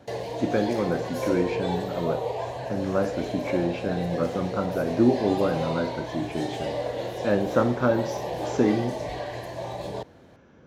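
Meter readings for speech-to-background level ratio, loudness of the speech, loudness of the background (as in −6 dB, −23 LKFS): 5.0 dB, −27.0 LKFS, −32.0 LKFS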